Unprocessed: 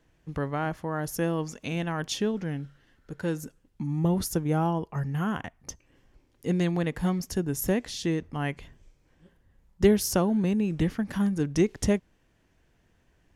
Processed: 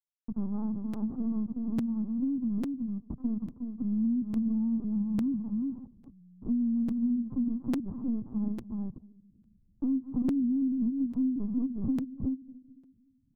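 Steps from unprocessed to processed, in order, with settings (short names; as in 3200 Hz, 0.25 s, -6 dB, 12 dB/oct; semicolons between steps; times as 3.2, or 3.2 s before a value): level-crossing sampler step -29.5 dBFS; echo 0.371 s -7.5 dB; on a send at -22.5 dB: reverb RT60 0.80 s, pre-delay 3 ms; on the sum: frequency shift +59 Hz; soft clip -21.5 dBFS, distortion -12 dB; resonant low shelf 350 Hz +10 dB, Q 3; compressor 3:1, threshold -31 dBFS, peak gain reduction 16.5 dB; Chebyshev band-pass 110–1100 Hz, order 4; air absorption 280 m; LPC vocoder at 8 kHz pitch kept; crackling interface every 0.85 s, samples 256, repeat, from 0.93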